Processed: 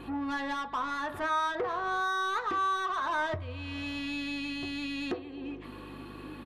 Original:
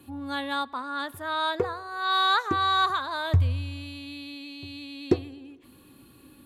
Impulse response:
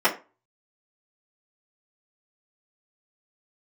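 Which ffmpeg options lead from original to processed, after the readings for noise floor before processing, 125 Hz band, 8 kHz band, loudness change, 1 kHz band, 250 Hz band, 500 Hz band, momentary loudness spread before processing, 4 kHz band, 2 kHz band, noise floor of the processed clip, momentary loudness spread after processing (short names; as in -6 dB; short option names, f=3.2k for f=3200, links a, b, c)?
-54 dBFS, -15.5 dB, n/a, -5.5 dB, -3.5 dB, -2.0 dB, -4.5 dB, 17 LU, -9.5 dB, -2.5 dB, -45 dBFS, 12 LU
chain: -filter_complex "[0:a]aeval=exprs='val(0)+0.00398*(sin(2*PI*50*n/s)+sin(2*PI*2*50*n/s)/2+sin(2*PI*3*50*n/s)/3+sin(2*PI*4*50*n/s)/4+sin(2*PI*5*50*n/s)/5)':c=same,acompressor=threshold=-36dB:ratio=6,aemphasis=mode=reproduction:type=75kf,asplit=2[a][b];[b]highpass=f=720:p=1,volume=21dB,asoftclip=type=tanh:threshold=-26dB[c];[a][c]amix=inputs=2:normalize=0,lowpass=f=3.1k:p=1,volume=-6dB,asplit=2[d][e];[1:a]atrim=start_sample=2205[f];[e][f]afir=irnorm=-1:irlink=0,volume=-21dB[g];[d][g]amix=inputs=2:normalize=0,aresample=32000,aresample=44100"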